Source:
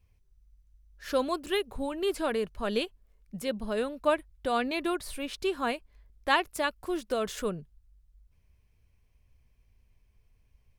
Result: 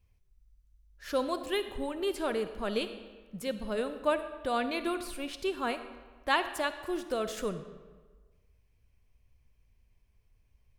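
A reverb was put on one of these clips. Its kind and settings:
comb and all-pass reverb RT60 1.4 s, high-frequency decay 0.75×, pre-delay 10 ms, DRR 10 dB
level −2.5 dB

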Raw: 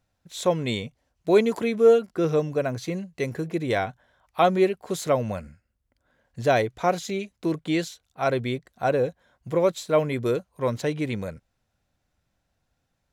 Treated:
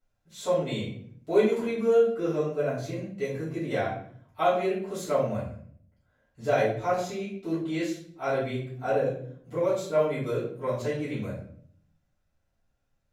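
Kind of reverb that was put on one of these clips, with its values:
rectangular room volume 88 cubic metres, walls mixed, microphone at 2.9 metres
level −16.5 dB

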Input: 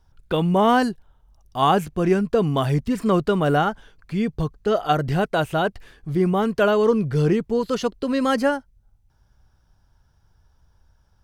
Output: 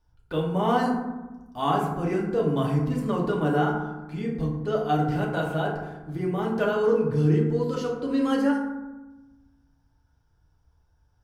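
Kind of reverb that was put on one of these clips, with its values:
feedback delay network reverb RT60 1.1 s, low-frequency decay 1.45×, high-frequency decay 0.4×, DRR −3 dB
level −11 dB

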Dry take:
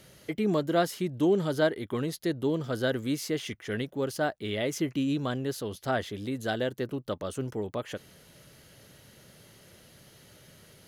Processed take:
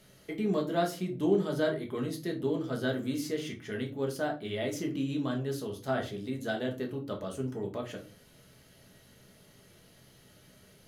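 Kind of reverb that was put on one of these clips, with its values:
rectangular room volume 190 cubic metres, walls furnished, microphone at 1.4 metres
level −6.5 dB

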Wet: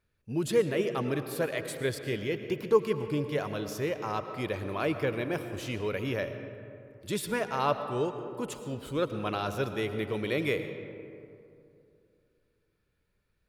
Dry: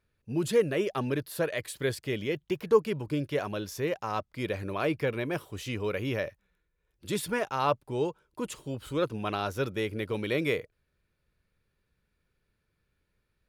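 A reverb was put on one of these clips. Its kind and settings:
comb and all-pass reverb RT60 2.7 s, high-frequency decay 0.4×, pre-delay 70 ms, DRR 8.5 dB
level −1 dB

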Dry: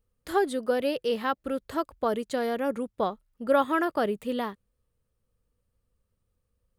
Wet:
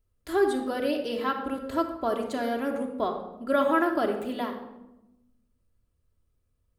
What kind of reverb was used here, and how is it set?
rectangular room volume 3,600 cubic metres, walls furnished, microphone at 3 metres
level −2.5 dB

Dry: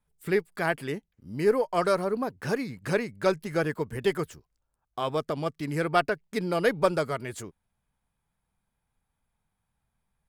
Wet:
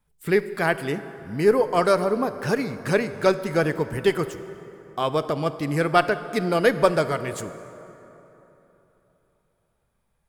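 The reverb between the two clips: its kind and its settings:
dense smooth reverb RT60 3.5 s, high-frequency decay 0.55×, DRR 12 dB
level +5 dB

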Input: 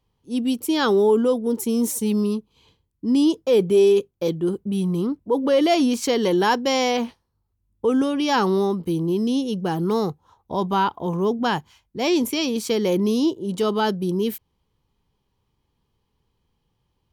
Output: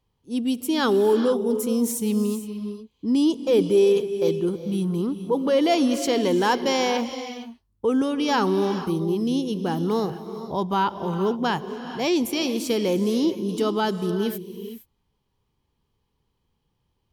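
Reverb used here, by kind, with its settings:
reverb whose tail is shaped and stops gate 490 ms rising, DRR 10 dB
level −2 dB

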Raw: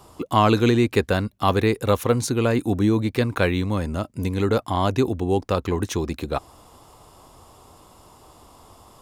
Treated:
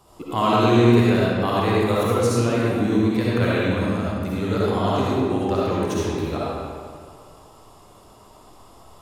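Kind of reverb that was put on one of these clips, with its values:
comb and all-pass reverb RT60 2 s, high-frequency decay 0.7×, pre-delay 25 ms, DRR −7.5 dB
level −7 dB

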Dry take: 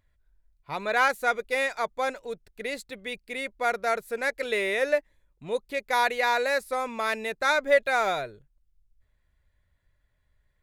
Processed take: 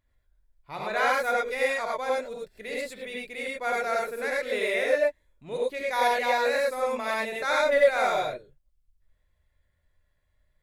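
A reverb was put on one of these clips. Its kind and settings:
reverb whose tail is shaped and stops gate 130 ms rising, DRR −3.5 dB
level −5.5 dB

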